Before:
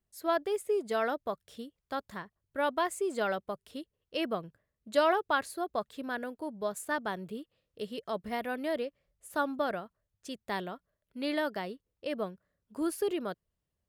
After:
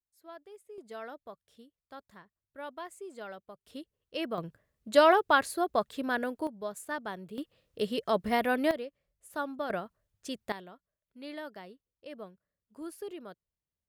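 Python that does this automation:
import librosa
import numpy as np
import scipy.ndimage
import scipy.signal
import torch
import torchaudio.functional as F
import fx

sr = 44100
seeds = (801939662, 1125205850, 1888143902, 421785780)

y = fx.gain(x, sr, db=fx.steps((0.0, -19.0), (0.78, -12.0), (3.67, -2.0), (4.38, 5.0), (6.47, -3.5), (7.38, 7.0), (8.71, -4.0), (9.7, 3.0), (10.52, -10.0)))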